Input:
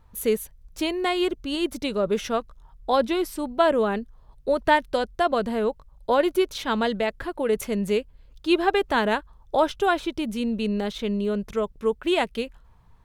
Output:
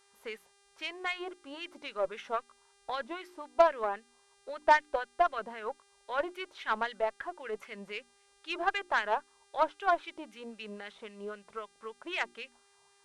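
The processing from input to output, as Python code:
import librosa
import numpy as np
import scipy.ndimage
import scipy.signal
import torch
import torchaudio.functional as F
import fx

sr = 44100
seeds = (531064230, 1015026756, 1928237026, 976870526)

y = fx.hum_notches(x, sr, base_hz=60, count=6)
y = fx.wah_lfo(y, sr, hz=3.8, low_hz=760.0, high_hz=2200.0, q=2.0)
y = fx.dmg_buzz(y, sr, base_hz=400.0, harmonics=26, level_db=-64.0, tilt_db=-2, odd_only=False)
y = fx.cheby_harmonics(y, sr, harmonics=(2, 4, 7, 8), levels_db=(-18, -27, -28, -32), full_scale_db=-10.0)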